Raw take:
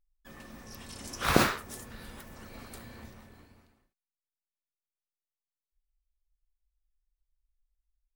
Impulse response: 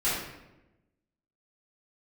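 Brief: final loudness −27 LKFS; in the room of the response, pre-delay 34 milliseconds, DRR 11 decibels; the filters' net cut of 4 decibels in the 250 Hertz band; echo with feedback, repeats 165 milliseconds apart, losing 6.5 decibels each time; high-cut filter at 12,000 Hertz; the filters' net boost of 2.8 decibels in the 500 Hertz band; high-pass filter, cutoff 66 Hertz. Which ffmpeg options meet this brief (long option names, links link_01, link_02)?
-filter_complex "[0:a]highpass=66,lowpass=12000,equalizer=frequency=250:width_type=o:gain=-7.5,equalizer=frequency=500:width_type=o:gain=5.5,aecho=1:1:165|330|495|660|825|990:0.473|0.222|0.105|0.0491|0.0231|0.0109,asplit=2[link_01][link_02];[1:a]atrim=start_sample=2205,adelay=34[link_03];[link_02][link_03]afir=irnorm=-1:irlink=0,volume=-22dB[link_04];[link_01][link_04]amix=inputs=2:normalize=0,volume=1.5dB"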